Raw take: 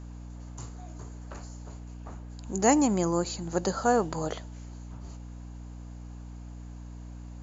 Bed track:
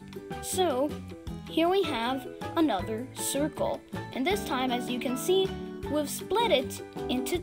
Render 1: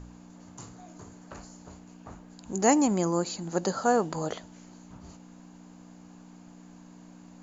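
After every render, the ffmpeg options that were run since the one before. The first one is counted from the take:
-af "bandreject=f=60:t=h:w=4,bandreject=f=120:t=h:w=4"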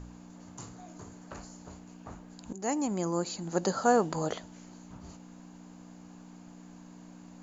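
-filter_complex "[0:a]asplit=2[a][b];[a]atrim=end=2.53,asetpts=PTS-STARTPTS,afade=t=out:st=2.526:d=0.004:c=hsin:silence=0.188365[c];[b]atrim=start=2.53,asetpts=PTS-STARTPTS,afade=t=in:d=1.56:c=qsin:silence=0.188365[d];[c][d]concat=n=2:v=0:a=1"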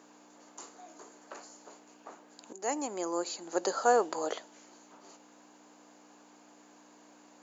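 -af "highpass=f=340:w=0.5412,highpass=f=340:w=1.3066"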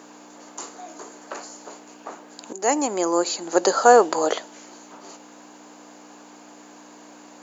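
-af "volume=12dB,alimiter=limit=-1dB:level=0:latency=1"

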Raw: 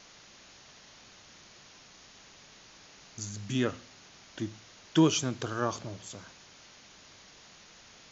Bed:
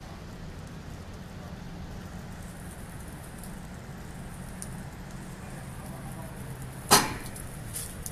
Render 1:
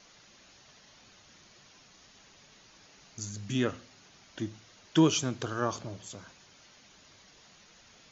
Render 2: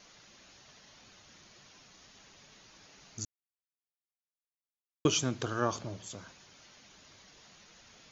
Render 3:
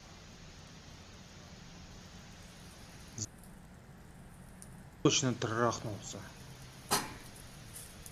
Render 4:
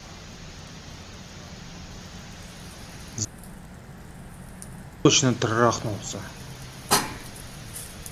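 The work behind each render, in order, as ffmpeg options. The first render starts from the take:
-af "afftdn=nr=6:nf=-55"
-filter_complex "[0:a]asplit=3[a][b][c];[a]atrim=end=3.25,asetpts=PTS-STARTPTS,afade=t=out:st=3.246:d=0.004:c=hsin[d];[b]atrim=start=3.25:end=5.05,asetpts=PTS-STARTPTS,volume=0[e];[c]atrim=start=5.05,asetpts=PTS-STARTPTS,afade=t=in:d=0.004:c=hsin[f];[d][e][f]concat=n=3:v=0:a=1"
-filter_complex "[1:a]volume=-12.5dB[a];[0:a][a]amix=inputs=2:normalize=0"
-af "volume=11dB,alimiter=limit=-3dB:level=0:latency=1"

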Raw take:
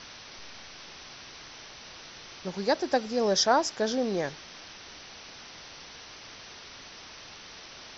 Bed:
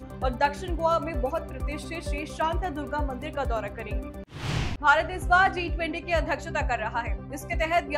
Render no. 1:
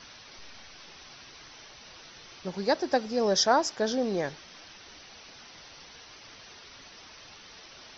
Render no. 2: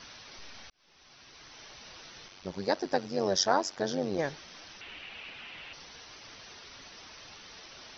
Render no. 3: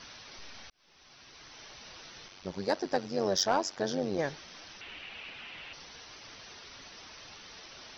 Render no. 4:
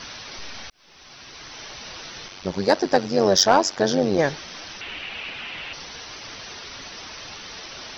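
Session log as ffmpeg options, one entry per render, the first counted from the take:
-af "afftdn=nr=6:nf=-47"
-filter_complex "[0:a]asettb=1/sr,asplit=3[a][b][c];[a]atrim=end=2.284[d];[b]atrim=start=2.28:end=4.19,asetpts=PTS-STARTPTS,afade=t=in:d=0.004:c=qsin,afade=t=out:st=1.906:d=0.004:c=qsin,tremolo=f=95:d=0.824[e];[c]atrim=start=4.186[f];[d][e]acrossfade=d=0.004:c1=hsin:c2=qsin[g];[g][f]acrossfade=d=0.004:c1=qsin:c2=hsin,asettb=1/sr,asplit=3[h][i][j];[h]atrim=end=4.814[k];[i]atrim=start=4.81:end=5.73,asetpts=PTS-STARTPTS,afade=t=in:d=0.004:c=qsin,afade=t=out:st=0.916:d=0.004:c=qsin,lowpass=f=2.7k:t=q:w=3.7[l];[j]atrim=start=5.726[m];[k][l]acrossfade=d=0.004:c1=hsin:c2=qsin[n];[n][m]acrossfade=d=0.004:c1=qsin:c2=hsin,asplit=2[o][p];[o]atrim=end=0.7,asetpts=PTS-STARTPTS,afade=t=out:st=0.696:d=0.004:c=hsin[q];[p]atrim=start=0.7,asetpts=PTS-STARTPTS,afade=t=in:d=1.02[r];[q][r]concat=n=2:v=0:a=1"
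-af "asoftclip=type=tanh:threshold=-16.5dB"
-af "volume=11.5dB"

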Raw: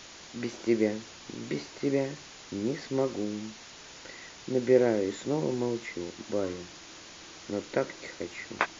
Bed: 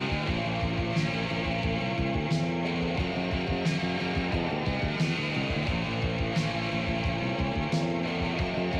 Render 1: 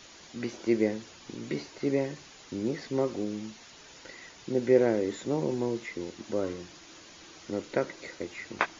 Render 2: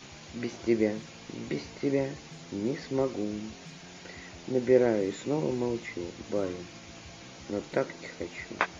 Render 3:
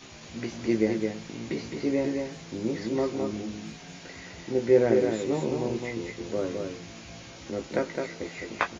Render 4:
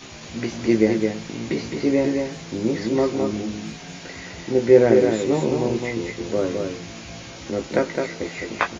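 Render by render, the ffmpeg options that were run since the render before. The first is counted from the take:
-af "afftdn=nr=6:nf=-49"
-filter_complex "[1:a]volume=-20.5dB[a];[0:a][a]amix=inputs=2:normalize=0"
-filter_complex "[0:a]asplit=2[a][b];[b]adelay=18,volume=-7dB[c];[a][c]amix=inputs=2:normalize=0,aecho=1:1:212:0.596"
-af "volume=7dB,alimiter=limit=-2dB:level=0:latency=1"

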